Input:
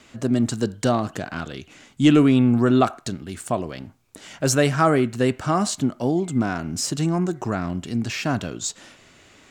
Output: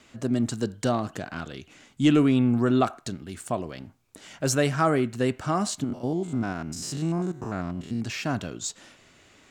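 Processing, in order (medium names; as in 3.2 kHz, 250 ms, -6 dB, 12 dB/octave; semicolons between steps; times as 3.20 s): 5.84–8.01 s: spectrogram pixelated in time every 100 ms; trim -4.5 dB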